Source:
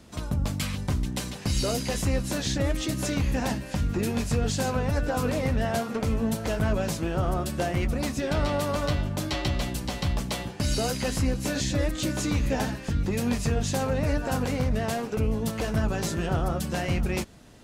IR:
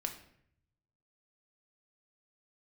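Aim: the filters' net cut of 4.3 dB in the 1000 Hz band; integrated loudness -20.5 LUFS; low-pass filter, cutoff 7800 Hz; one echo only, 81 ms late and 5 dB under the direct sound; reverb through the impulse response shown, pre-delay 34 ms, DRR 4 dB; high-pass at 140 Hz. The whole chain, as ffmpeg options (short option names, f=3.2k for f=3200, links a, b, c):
-filter_complex "[0:a]highpass=140,lowpass=7.8k,equalizer=f=1k:t=o:g=-6.5,aecho=1:1:81:0.562,asplit=2[a][b];[1:a]atrim=start_sample=2205,adelay=34[c];[b][c]afir=irnorm=-1:irlink=0,volume=-4.5dB[d];[a][d]amix=inputs=2:normalize=0,volume=7dB"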